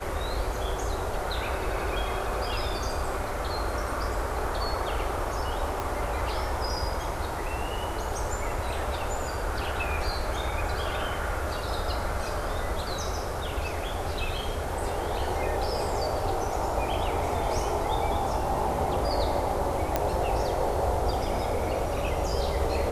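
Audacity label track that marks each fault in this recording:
5.800000	5.800000	pop
19.960000	19.960000	pop -10 dBFS

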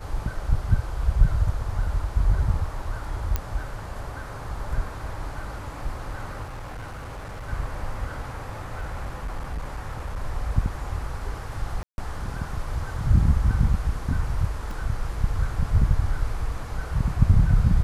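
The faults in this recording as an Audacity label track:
3.360000	3.360000	pop -11 dBFS
6.430000	7.490000	clipped -32 dBFS
8.600000	10.190000	clipped -26 dBFS
11.830000	11.980000	gap 0.151 s
14.710000	14.710000	gap 2.5 ms

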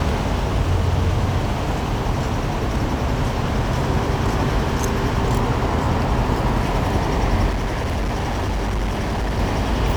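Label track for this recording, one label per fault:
7.490000	9.400000	clipped -18.5 dBFS

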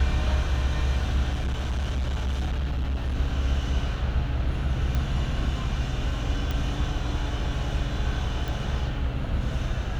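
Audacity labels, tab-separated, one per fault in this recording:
1.320000	3.150000	clipped -23.5 dBFS
4.950000	4.950000	pop -15 dBFS
6.510000	6.510000	pop -16 dBFS
8.480000	8.480000	pop

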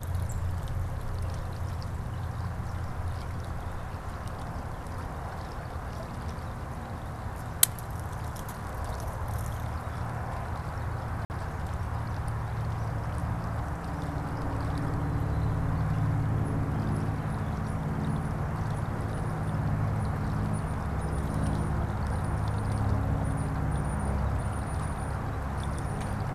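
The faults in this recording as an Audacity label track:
11.250000	11.300000	gap 49 ms

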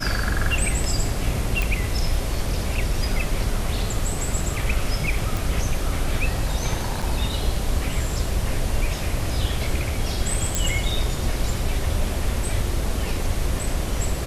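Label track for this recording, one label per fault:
1.620000	1.620000	pop
5.370000	5.370000	pop
7.020000	7.030000	gap 5.9 ms
10.550000	10.550000	pop

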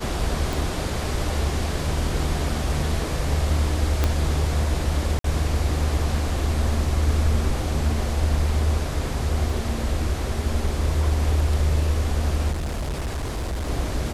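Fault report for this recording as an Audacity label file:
0.530000	0.530000	pop
4.040000	4.040000	pop -7 dBFS
5.190000	5.240000	gap 53 ms
9.500000	9.500000	gap 2.4 ms
12.510000	13.700000	clipped -23.5 dBFS

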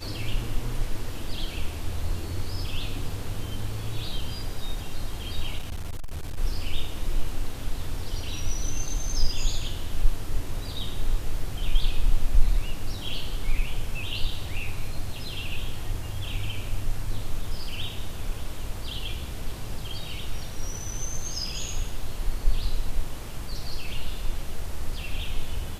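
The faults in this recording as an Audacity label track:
5.580000	6.380000	clipped -27.5 dBFS

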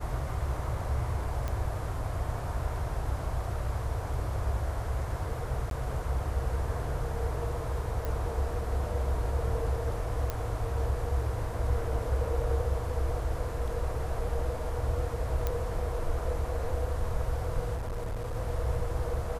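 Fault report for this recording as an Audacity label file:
1.480000	1.480000	pop -21 dBFS
5.700000	5.710000	gap 12 ms
8.050000	8.050000	pop
10.300000	10.300000	pop -17 dBFS
15.470000	15.470000	pop -16 dBFS
17.750000	18.360000	clipped -30.5 dBFS

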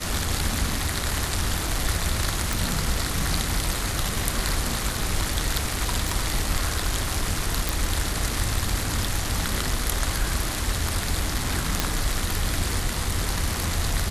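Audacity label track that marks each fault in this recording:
2.530000	2.530000	pop
6.090000	6.090000	pop
7.690000	7.690000	pop
11.800000	11.800000	pop -4 dBFS

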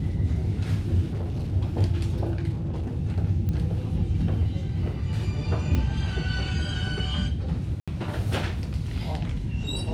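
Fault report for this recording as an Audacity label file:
1.100000	1.530000	clipped -25.5 dBFS
2.520000	2.970000	clipped -26 dBFS
3.490000	3.490000	pop -19 dBFS
5.750000	5.750000	pop -14 dBFS
7.800000	7.880000	gap 76 ms

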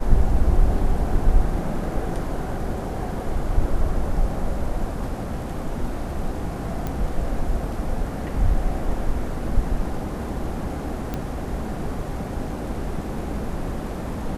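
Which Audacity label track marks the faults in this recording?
6.870000	6.870000	pop -15 dBFS
11.140000	11.140000	pop -14 dBFS

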